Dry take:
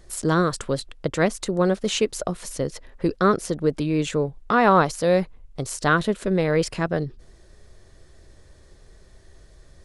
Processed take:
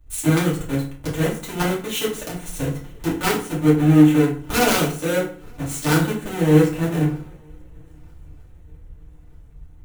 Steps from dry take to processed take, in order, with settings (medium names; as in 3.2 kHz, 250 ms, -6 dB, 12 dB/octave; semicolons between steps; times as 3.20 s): square wave that keeps the level; peaking EQ 4.9 kHz -13 dB 0.36 oct; harmonic-percussive split harmonic +4 dB; dynamic bell 1 kHz, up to -7 dB, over -35 dBFS, Q 3; compression 2:1, threshold -31 dBFS, peak gain reduction 13.5 dB; integer overflow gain 16 dB; on a send: shuffle delay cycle 1240 ms, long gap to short 3:1, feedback 51%, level -22.5 dB; on the sum: FDN reverb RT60 0.55 s, low-frequency decay 1.25×, high-frequency decay 0.7×, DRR -5.5 dB; three bands expanded up and down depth 70%; trim -3 dB